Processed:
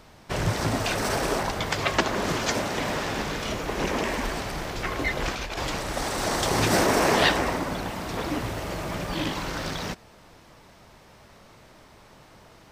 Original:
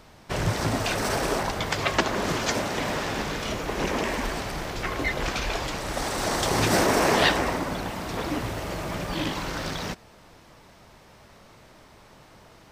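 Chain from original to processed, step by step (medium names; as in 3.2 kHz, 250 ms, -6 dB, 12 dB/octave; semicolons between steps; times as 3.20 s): 5.35–5.83 s: compressor with a negative ratio -30 dBFS, ratio -0.5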